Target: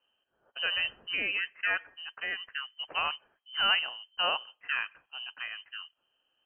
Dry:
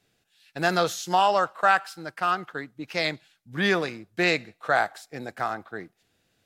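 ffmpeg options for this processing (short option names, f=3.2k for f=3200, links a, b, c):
-af "asetnsamples=n=441:p=0,asendcmd='2.54 equalizer g -2;3.79 equalizer g -12.5',equalizer=f=940:w=1:g=-12,lowpass=f=2.7k:t=q:w=0.5098,lowpass=f=2.7k:t=q:w=0.6013,lowpass=f=2.7k:t=q:w=0.9,lowpass=f=2.7k:t=q:w=2.563,afreqshift=-3200,volume=-2.5dB"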